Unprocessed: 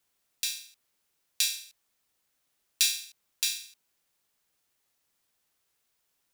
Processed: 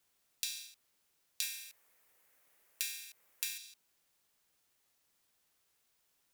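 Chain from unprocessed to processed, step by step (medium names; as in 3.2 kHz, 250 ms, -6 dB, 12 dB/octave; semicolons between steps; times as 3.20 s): 1.42–3.58 s: ten-band graphic EQ 500 Hz +9 dB, 1 kHz +4 dB, 2 kHz +9 dB, 4 kHz -3 dB, 16 kHz +9 dB; compression 10:1, threshold -34 dBFS, peak gain reduction 18 dB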